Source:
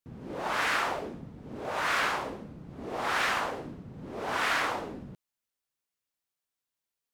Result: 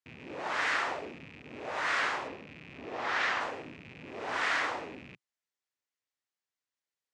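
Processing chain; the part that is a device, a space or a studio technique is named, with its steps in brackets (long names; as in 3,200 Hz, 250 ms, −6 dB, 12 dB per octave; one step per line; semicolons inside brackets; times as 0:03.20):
0:02.28–0:03.41: low-pass filter 6,000 Hz 12 dB per octave
car door speaker with a rattle (loose part that buzzes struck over −51 dBFS, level −36 dBFS; loudspeaker in its box 95–7,800 Hz, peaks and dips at 130 Hz −5 dB, 200 Hz −7 dB, 1,900 Hz +5 dB)
level −3.5 dB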